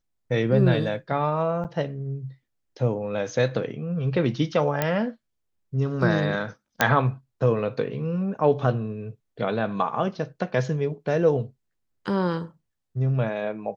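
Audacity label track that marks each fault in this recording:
1.640000	1.650000	dropout 8.5 ms
4.820000	4.820000	pop -8 dBFS
6.810000	6.810000	pop -3 dBFS

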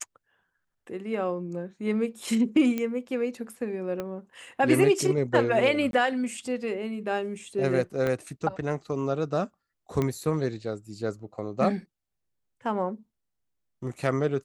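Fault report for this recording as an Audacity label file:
2.780000	2.780000	pop -16 dBFS
4.000000	4.000000	pop -19 dBFS
5.910000	5.930000	dropout 22 ms
8.070000	8.070000	pop -16 dBFS
10.020000	10.020000	pop -15 dBFS

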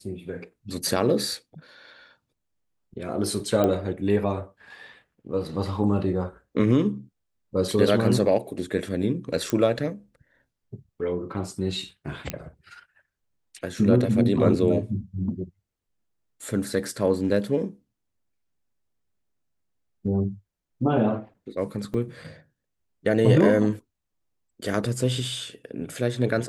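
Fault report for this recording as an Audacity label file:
3.640000	3.640000	pop -11 dBFS
9.500000	9.500000	pop -12 dBFS
12.300000	12.300000	pop -11 dBFS
21.940000	21.940000	dropout 4.3 ms

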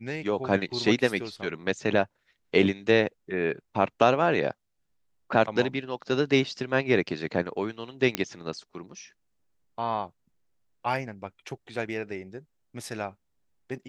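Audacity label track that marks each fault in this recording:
8.150000	8.150000	pop -9 dBFS

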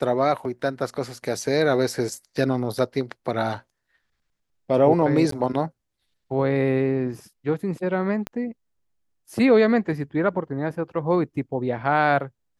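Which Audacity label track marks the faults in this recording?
5.310000	5.320000	dropout 13 ms
8.270000	8.270000	pop -15 dBFS

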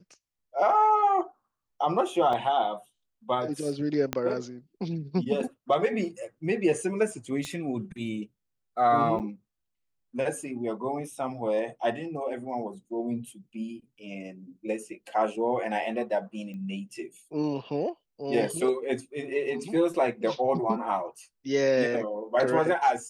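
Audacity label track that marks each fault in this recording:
2.330000	2.330000	dropout 3.1 ms
4.130000	4.130000	pop -12 dBFS
7.450000	7.450000	pop -21 dBFS
9.190000	9.200000	dropout 8.4 ms
16.540000	16.540000	pop -32 dBFS

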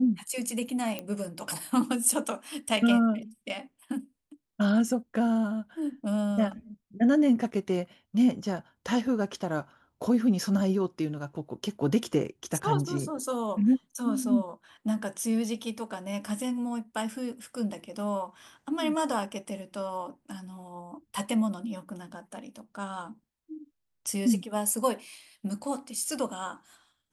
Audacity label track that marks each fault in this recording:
0.990000	0.990000	pop -19 dBFS

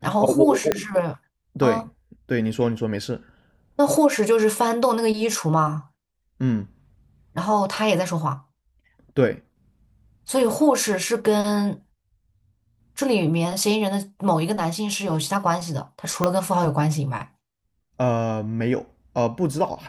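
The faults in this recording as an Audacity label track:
0.720000	0.720000	pop -6 dBFS
16.240000	16.240000	pop -6 dBFS

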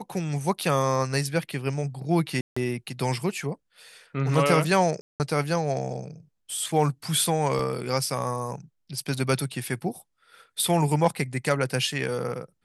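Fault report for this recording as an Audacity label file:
2.410000	2.560000	dropout 155 ms
5.010000	5.200000	dropout 189 ms
7.590000	7.590000	dropout 3.1 ms

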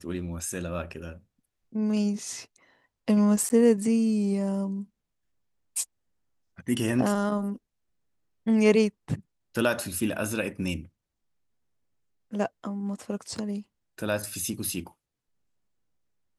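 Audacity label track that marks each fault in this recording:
3.490000	3.500000	dropout 9.7 ms
13.380000	13.380000	dropout 3 ms

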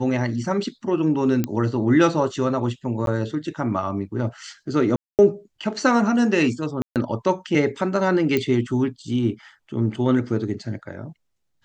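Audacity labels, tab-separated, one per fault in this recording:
1.440000	1.440000	pop -10 dBFS
3.060000	3.070000	dropout 12 ms
4.960000	5.190000	dropout 228 ms
6.820000	6.960000	dropout 138 ms
8.370000	8.370000	pop -9 dBFS

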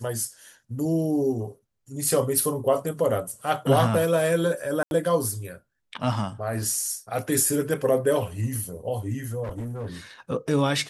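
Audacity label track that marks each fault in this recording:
4.830000	4.910000	dropout 81 ms
9.430000	9.870000	clipped -28.5 dBFS

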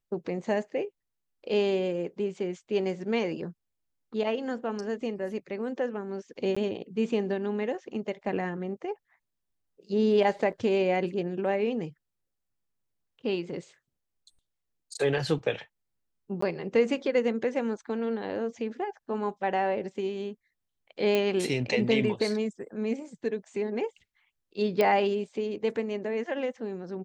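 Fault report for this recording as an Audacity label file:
6.550000	6.570000	dropout 15 ms
10.520000	10.530000	dropout 6.9 ms
16.410000	16.420000	dropout 14 ms
21.150000	21.150000	pop -13 dBFS
24.810000	24.810000	pop -13 dBFS

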